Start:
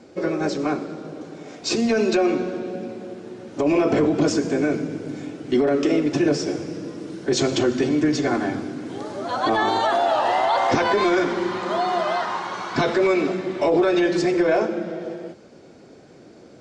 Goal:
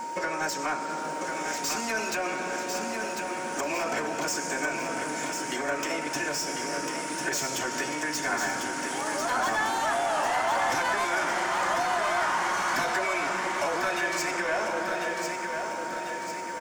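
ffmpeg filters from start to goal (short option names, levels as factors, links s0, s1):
-filter_complex "[0:a]highpass=120,aemphasis=mode=production:type=riaa,acrossover=split=160[s0][s1];[s1]acompressor=threshold=0.0224:ratio=3[s2];[s0][s2]amix=inputs=2:normalize=0,aeval=exprs='val(0)+0.00891*sin(2*PI*930*n/s)':c=same,acrossover=split=520[s3][s4];[s3]acompressor=threshold=0.00562:ratio=6[s5];[s4]asoftclip=type=tanh:threshold=0.0251[s6];[s5][s6]amix=inputs=2:normalize=0,equalizer=f=400:t=o:w=0.67:g=-6,equalizer=f=1600:t=o:w=0.67:g=4,equalizer=f=4000:t=o:w=0.67:g=-11,asplit=2[s7][s8];[s8]aecho=0:1:1047|2094|3141|4188|5235|6282|7329:0.531|0.281|0.149|0.079|0.0419|0.0222|0.0118[s9];[s7][s9]amix=inputs=2:normalize=0,volume=2.66"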